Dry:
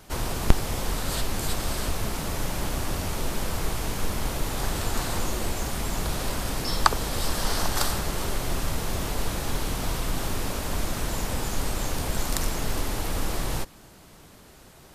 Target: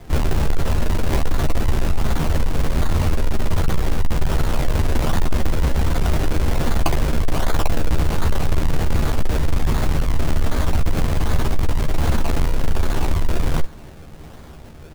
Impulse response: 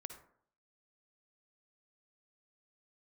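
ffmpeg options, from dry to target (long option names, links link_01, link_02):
-filter_complex "[0:a]lowshelf=frequency=130:gain=11,asplit=2[link_01][link_02];[link_02]acontrast=86,volume=-1.5dB[link_03];[link_01][link_03]amix=inputs=2:normalize=0,acrusher=samples=31:mix=1:aa=0.000001:lfo=1:lforange=31:lforate=1.3,volume=10dB,asoftclip=hard,volume=-10dB,asplit=2[link_04][link_05];[link_05]adelay=13,volume=-6dB[link_06];[link_04][link_06]amix=inputs=2:normalize=0,volume=-3.5dB"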